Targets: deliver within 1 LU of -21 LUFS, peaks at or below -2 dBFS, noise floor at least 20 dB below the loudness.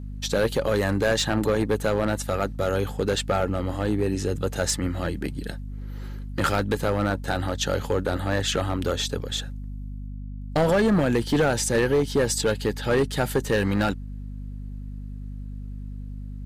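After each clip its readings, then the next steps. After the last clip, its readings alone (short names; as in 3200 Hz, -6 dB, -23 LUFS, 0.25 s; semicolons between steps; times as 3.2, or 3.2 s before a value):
clipped 1.7%; flat tops at -15.5 dBFS; hum 50 Hz; harmonics up to 250 Hz; hum level -32 dBFS; loudness -24.5 LUFS; peak -15.5 dBFS; loudness target -21.0 LUFS
-> clip repair -15.5 dBFS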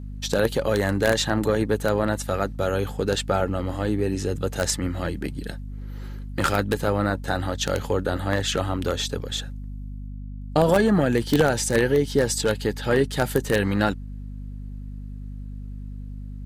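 clipped 0.0%; hum 50 Hz; harmonics up to 250 Hz; hum level -31 dBFS
-> de-hum 50 Hz, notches 5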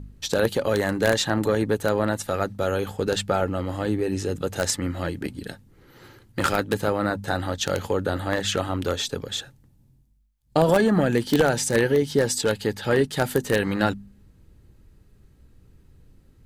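hum none; loudness -24.0 LUFS; peak -5.5 dBFS; loudness target -21.0 LUFS
-> gain +3 dB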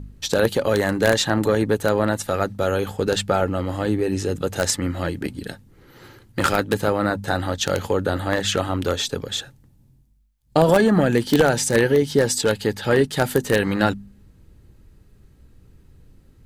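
loudness -21.0 LUFS; peak -2.5 dBFS; noise floor -55 dBFS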